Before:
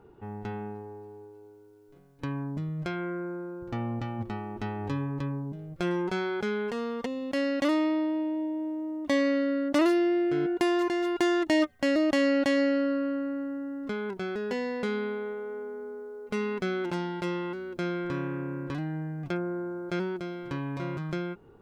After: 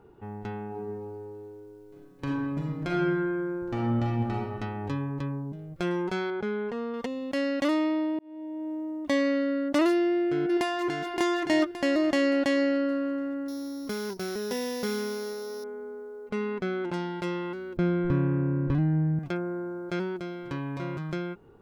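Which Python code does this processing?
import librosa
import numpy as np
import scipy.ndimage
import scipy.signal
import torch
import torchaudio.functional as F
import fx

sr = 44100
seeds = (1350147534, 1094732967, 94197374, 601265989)

y = fx.reverb_throw(x, sr, start_s=0.67, length_s=3.73, rt60_s=1.3, drr_db=-2.0)
y = fx.lowpass(y, sr, hz=1500.0, slope=6, at=(6.3, 6.94))
y = fx.echo_throw(y, sr, start_s=9.92, length_s=1.14, ms=570, feedback_pct=40, wet_db=-3.5)
y = fx.sample_sort(y, sr, block=8, at=(13.48, 15.64))
y = fx.high_shelf(y, sr, hz=3700.0, db=-10.0, at=(16.29, 16.94))
y = fx.riaa(y, sr, side='playback', at=(17.77, 19.19))
y = fx.edit(y, sr, fx.fade_in_span(start_s=8.19, length_s=0.55), tone=tone)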